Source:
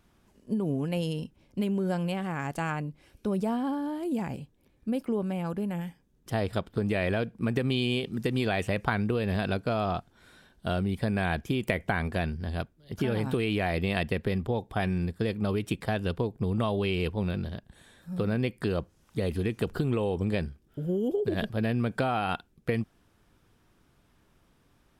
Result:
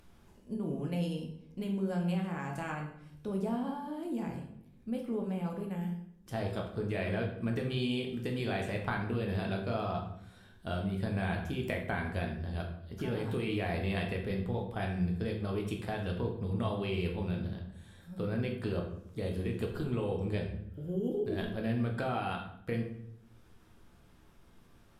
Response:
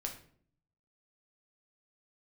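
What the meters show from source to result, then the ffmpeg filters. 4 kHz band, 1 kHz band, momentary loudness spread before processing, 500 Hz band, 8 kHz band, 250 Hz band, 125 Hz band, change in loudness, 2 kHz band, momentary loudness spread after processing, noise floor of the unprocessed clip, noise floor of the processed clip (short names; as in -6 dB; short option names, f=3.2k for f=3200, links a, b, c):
-6.5 dB, -6.0 dB, 7 LU, -5.5 dB, -6.5 dB, -5.0 dB, -4.0 dB, -5.0 dB, -6.5 dB, 8 LU, -66 dBFS, -59 dBFS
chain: -filter_complex "[0:a]acompressor=mode=upward:threshold=-46dB:ratio=2.5[a];[1:a]atrim=start_sample=2205,asetrate=30429,aresample=44100[b];[a][b]afir=irnorm=-1:irlink=0,volume=-8dB"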